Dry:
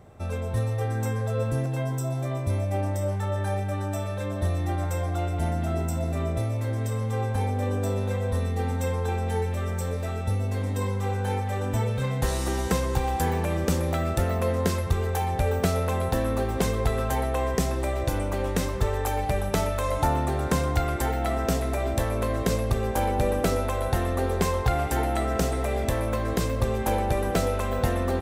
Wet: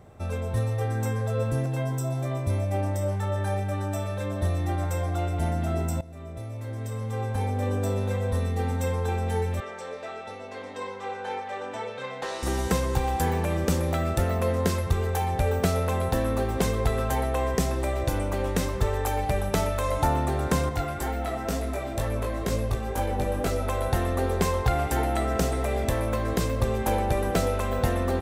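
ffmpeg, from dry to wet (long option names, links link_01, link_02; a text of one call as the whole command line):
ffmpeg -i in.wav -filter_complex "[0:a]asettb=1/sr,asplit=3[link_01][link_02][link_03];[link_01]atrim=end=9.604[link_04];[link_02]atrim=start=9.6:end=12.43,asetpts=PTS-STARTPTS,afade=type=in:duration=0.004:curve=qsin,afade=type=out:start_time=2.826:duration=0.004:curve=qsin,highpass=470,lowpass=4600[link_05];[link_03]atrim=start=12.426[link_06];[link_04][link_05]acrossfade=duration=0.004:curve1=hsin:curve2=qsin[link_07];[link_07][link_06]acrossfade=duration=0.004:curve1=qsin:curve2=hsin,asettb=1/sr,asplit=3[link_08][link_09][link_10];[link_08]atrim=end=20.694[link_11];[link_09]atrim=start=20.69:end=23.68,asetpts=PTS-STARTPTS,afade=type=in:duration=0.004:curve=qsin,afade=type=out:start_time=2.986:duration=0.004:curve=qsin,flanger=delay=18.5:depth=3.3:speed=2.1[link_12];[link_10]atrim=start=23.676[link_13];[link_11][link_12]acrossfade=duration=0.004:curve1=hsin:curve2=qsin[link_14];[link_14][link_13]acrossfade=duration=0.004:curve1=qsin:curve2=hsin,asplit=2[link_15][link_16];[link_15]atrim=end=6.01,asetpts=PTS-STARTPTS,afade=type=out:start_time=6.006:duration=0.004:curve=hsin:silence=0.11885[link_17];[link_16]atrim=start=6.01,asetpts=PTS-STARTPTS,afade=type=in:duration=1.68:silence=0.11885[link_18];[link_17][link_18]concat=n=2:v=0:a=1" out.wav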